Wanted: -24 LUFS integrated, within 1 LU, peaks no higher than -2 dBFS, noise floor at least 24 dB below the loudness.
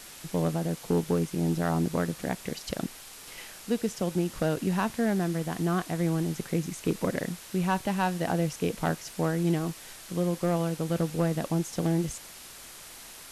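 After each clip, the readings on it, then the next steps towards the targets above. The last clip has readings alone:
clipped 0.3%; flat tops at -17.5 dBFS; noise floor -47 dBFS; noise floor target -54 dBFS; loudness -29.5 LUFS; peak -17.5 dBFS; loudness target -24.0 LUFS
-> clip repair -17.5 dBFS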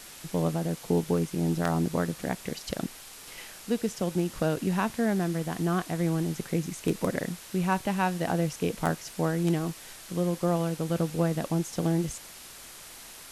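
clipped 0.0%; noise floor -47 dBFS; noise floor target -54 dBFS
-> denoiser 7 dB, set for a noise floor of -47 dBFS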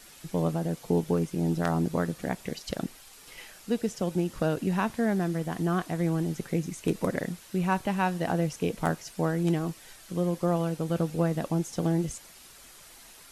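noise floor -51 dBFS; noise floor target -54 dBFS
-> denoiser 6 dB, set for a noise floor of -51 dBFS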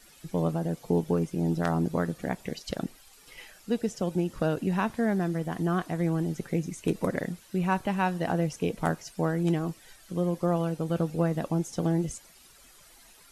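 noise floor -55 dBFS; loudness -29.5 LUFS; peak -9.5 dBFS; loudness target -24.0 LUFS
-> gain +5.5 dB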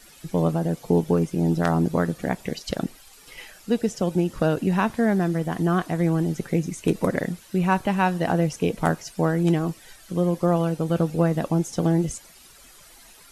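loudness -24.0 LUFS; peak -4.0 dBFS; noise floor -50 dBFS

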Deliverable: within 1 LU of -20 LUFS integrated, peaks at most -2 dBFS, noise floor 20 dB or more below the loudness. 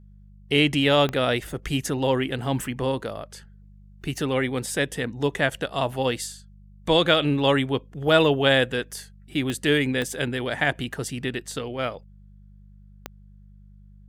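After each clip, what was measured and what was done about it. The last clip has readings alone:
clicks 4; hum 50 Hz; harmonics up to 200 Hz; hum level -47 dBFS; loudness -24.0 LUFS; peak -6.5 dBFS; loudness target -20.0 LUFS
-> de-click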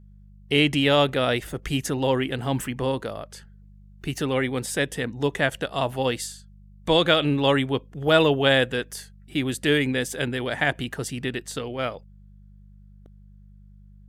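clicks 0; hum 50 Hz; harmonics up to 200 Hz; hum level -47 dBFS
-> de-hum 50 Hz, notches 4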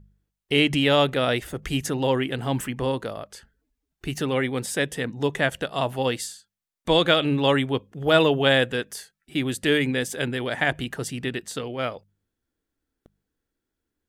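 hum none; loudness -24.0 LUFS; peak -6.5 dBFS; loudness target -20.0 LUFS
-> gain +4 dB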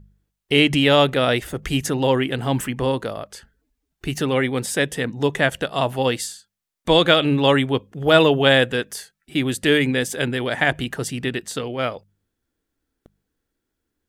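loudness -20.0 LUFS; peak -2.5 dBFS; noise floor -80 dBFS

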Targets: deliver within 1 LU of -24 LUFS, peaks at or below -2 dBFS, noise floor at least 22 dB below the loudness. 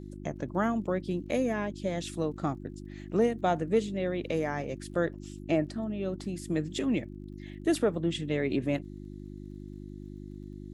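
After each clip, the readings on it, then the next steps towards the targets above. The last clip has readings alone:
ticks 29/s; hum 50 Hz; harmonics up to 350 Hz; hum level -40 dBFS; loudness -31.0 LUFS; peak -14.0 dBFS; loudness target -24.0 LUFS
-> de-click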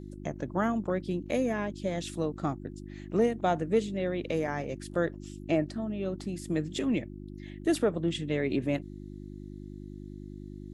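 ticks 0.093/s; hum 50 Hz; harmonics up to 350 Hz; hum level -40 dBFS
-> de-hum 50 Hz, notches 7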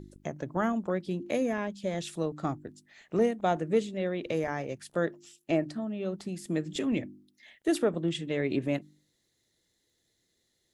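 hum none; loudness -31.5 LUFS; peak -14.0 dBFS; loudness target -24.0 LUFS
-> gain +7.5 dB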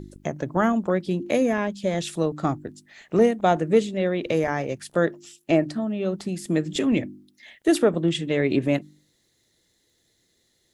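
loudness -24.0 LUFS; peak -6.5 dBFS; noise floor -68 dBFS

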